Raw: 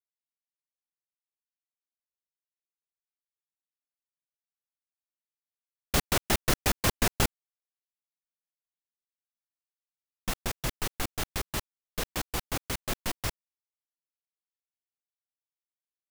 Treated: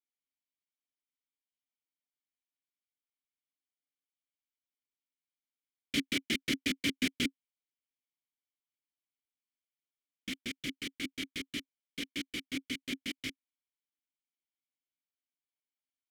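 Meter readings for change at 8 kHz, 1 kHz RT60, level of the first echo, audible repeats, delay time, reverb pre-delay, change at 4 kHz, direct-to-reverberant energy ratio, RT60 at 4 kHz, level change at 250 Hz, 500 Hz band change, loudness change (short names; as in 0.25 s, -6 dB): -11.0 dB, none, none, none, none, none, -1.5 dB, none, none, +0.5 dB, -12.0 dB, -5.0 dB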